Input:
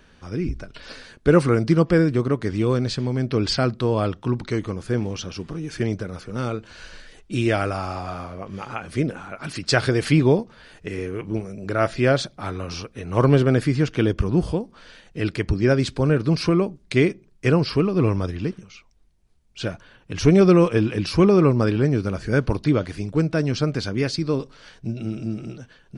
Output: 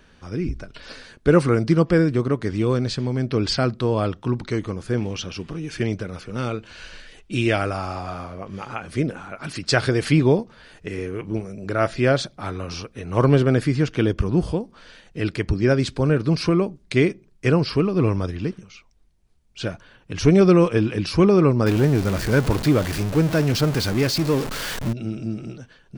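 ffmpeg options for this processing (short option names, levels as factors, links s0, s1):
-filter_complex "[0:a]asettb=1/sr,asplit=3[s0][s1][s2];[s0]atrim=end=4.974[s3];[s1]atrim=start=4.97:end=7.58,asetpts=PTS-STARTPTS,afade=t=in:d=0.004:c=qsin,afade=t=out:st=2.606:d=0.004:c=qsin,equalizer=f=2700:t=o:w=0.77:g=5[s4];[s2]atrim=start=7.576[s5];[s3][s4]acrossfade=d=0.004:c1=hsin:c2=qsin[s6];[s6][s5]acrossfade=d=0.004:c1=qsin:c2=hsin,asettb=1/sr,asplit=3[s7][s8][s9];[s7]atrim=end=21.664[s10];[s8]atrim=start=21.66:end=24.93,asetpts=PTS-STARTPTS,afade=t=in:d=0.004:c=qsin,afade=t=out:st=3.266:d=0.004:c=qsin,aeval=exprs='val(0)+0.5*0.0668*sgn(val(0))':c=same[s11];[s9]atrim=start=24.926[s12];[s10][s11]acrossfade=d=0.004:c1=hsin:c2=qsin[s13];[s13][s12]acrossfade=d=0.004:c1=qsin:c2=hsin"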